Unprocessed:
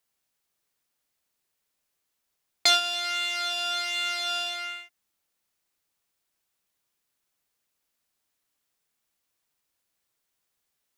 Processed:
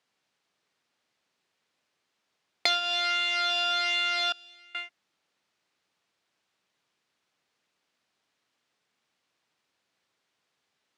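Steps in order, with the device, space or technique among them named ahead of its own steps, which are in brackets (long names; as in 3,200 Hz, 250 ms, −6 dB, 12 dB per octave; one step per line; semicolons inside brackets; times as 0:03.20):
AM radio (band-pass filter 130–4,400 Hz; downward compressor 4 to 1, threshold −30 dBFS, peak gain reduction 11.5 dB; soft clipping −15 dBFS, distortion −28 dB)
0:04.32–0:04.75: guitar amp tone stack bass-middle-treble 10-0-1
level +7 dB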